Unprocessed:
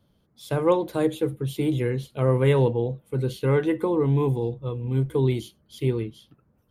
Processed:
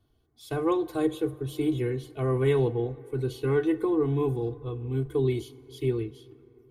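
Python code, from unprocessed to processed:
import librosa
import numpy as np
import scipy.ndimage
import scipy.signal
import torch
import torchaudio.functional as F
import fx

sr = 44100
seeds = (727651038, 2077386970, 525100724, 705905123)

y = fx.low_shelf(x, sr, hz=200.0, db=4.0)
y = y + 0.9 * np.pad(y, (int(2.7 * sr / 1000.0), 0))[:len(y)]
y = fx.rev_plate(y, sr, seeds[0], rt60_s=3.9, hf_ratio=0.4, predelay_ms=0, drr_db=18.5)
y = y * 10.0 ** (-7.0 / 20.0)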